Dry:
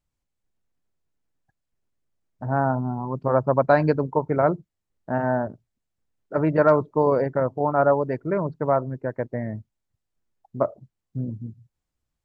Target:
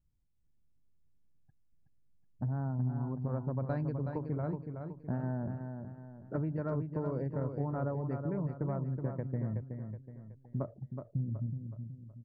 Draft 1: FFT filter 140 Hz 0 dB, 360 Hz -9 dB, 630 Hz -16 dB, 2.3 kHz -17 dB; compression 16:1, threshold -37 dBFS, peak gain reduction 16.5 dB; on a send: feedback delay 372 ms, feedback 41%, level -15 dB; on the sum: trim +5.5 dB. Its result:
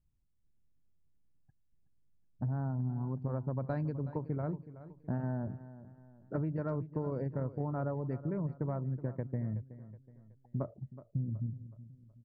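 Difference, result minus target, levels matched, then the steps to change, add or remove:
echo-to-direct -8.5 dB
change: feedback delay 372 ms, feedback 41%, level -6.5 dB

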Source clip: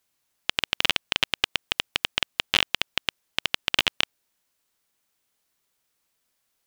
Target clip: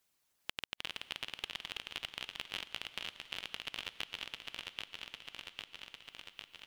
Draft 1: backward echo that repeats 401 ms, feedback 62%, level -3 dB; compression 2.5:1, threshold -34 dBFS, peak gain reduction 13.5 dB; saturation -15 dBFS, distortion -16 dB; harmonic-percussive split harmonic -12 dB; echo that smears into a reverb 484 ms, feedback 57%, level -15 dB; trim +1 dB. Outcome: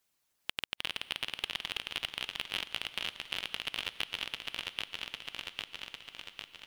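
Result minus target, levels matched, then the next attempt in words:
compression: peak gain reduction -7 dB
backward echo that repeats 401 ms, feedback 62%, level -3 dB; compression 2.5:1, threshold -45.5 dBFS, peak gain reduction 20.5 dB; saturation -15 dBFS, distortion -27 dB; harmonic-percussive split harmonic -12 dB; echo that smears into a reverb 484 ms, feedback 57%, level -15 dB; trim +1 dB

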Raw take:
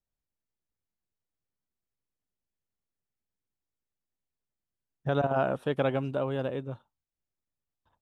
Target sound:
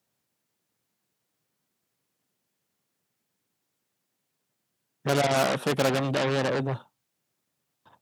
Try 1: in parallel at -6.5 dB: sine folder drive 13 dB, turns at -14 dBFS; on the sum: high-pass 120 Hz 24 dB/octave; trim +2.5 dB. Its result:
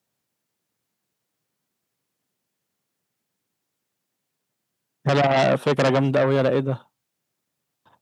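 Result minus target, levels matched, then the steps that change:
sine folder: distortion -21 dB
change: sine folder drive 13 dB, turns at -23 dBFS

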